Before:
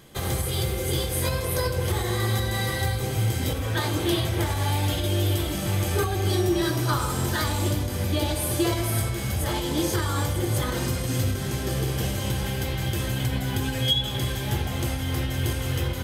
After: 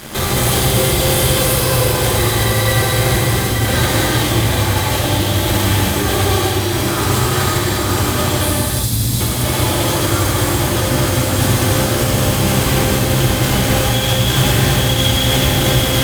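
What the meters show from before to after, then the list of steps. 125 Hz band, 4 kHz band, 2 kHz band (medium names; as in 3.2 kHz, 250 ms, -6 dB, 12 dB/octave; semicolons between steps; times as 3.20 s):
+9.5 dB, +12.0 dB, +12.5 dB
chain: on a send: echo that smears into a reverb 970 ms, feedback 67%, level -4 dB; on the sum: compressor with a negative ratio -29 dBFS, ratio -0.5; time-frequency box 8.45–9.20 s, 290–3300 Hz -25 dB; fuzz box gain 38 dB, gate -42 dBFS; gated-style reverb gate 430 ms flat, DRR -6.5 dB; trim -5.5 dB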